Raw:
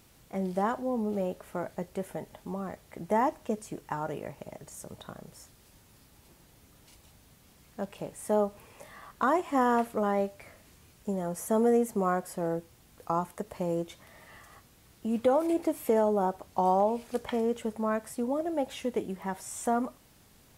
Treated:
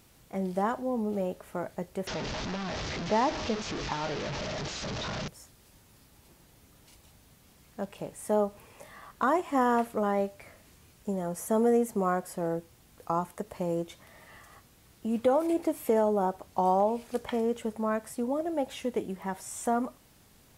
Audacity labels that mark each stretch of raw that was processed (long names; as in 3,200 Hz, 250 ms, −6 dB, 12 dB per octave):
2.070000	5.280000	linear delta modulator 32 kbit/s, step −28.5 dBFS